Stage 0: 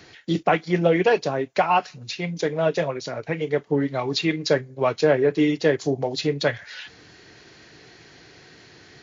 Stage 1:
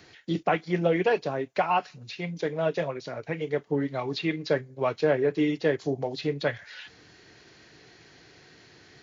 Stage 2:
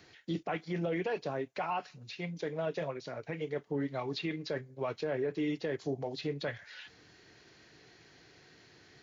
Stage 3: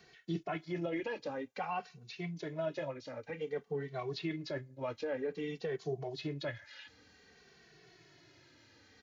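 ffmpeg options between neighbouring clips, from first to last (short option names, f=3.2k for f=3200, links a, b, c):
-filter_complex "[0:a]acrossover=split=4400[a][b];[b]acompressor=threshold=-49dB:ratio=4:attack=1:release=60[c];[a][c]amix=inputs=2:normalize=0,volume=-5dB"
-af "alimiter=limit=-20dB:level=0:latency=1:release=21,volume=-5.5dB"
-filter_complex "[0:a]asplit=2[a][b];[b]adelay=2.2,afreqshift=-0.53[c];[a][c]amix=inputs=2:normalize=1"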